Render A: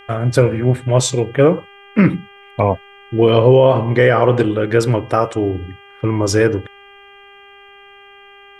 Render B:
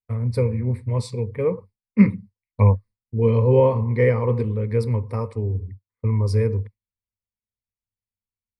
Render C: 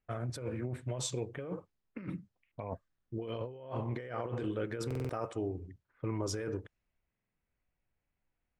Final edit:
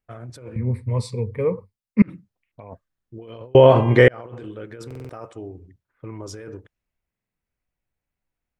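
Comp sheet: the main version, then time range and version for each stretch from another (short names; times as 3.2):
C
0.56–2.02 from B
3.55–4.08 from A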